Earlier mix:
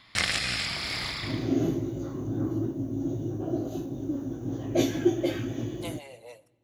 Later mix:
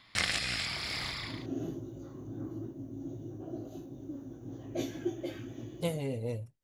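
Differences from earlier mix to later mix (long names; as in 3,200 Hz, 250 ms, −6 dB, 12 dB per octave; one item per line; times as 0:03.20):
speech: remove Butterworth high-pass 590 Hz
second sound −10.0 dB
reverb: off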